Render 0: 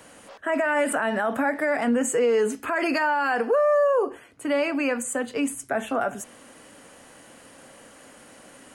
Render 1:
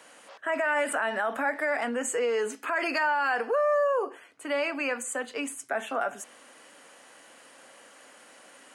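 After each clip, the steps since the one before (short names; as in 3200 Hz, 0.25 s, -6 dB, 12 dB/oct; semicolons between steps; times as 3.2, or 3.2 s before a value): weighting filter A; gain -2.5 dB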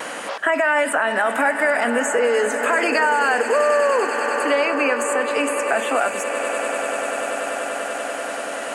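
swelling echo 97 ms, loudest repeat 8, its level -17 dB; vibrato 0.41 Hz 10 cents; three-band squash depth 70%; gain +8 dB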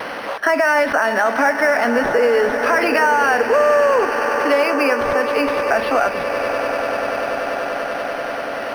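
decimation joined by straight lines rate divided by 6×; gain +3.5 dB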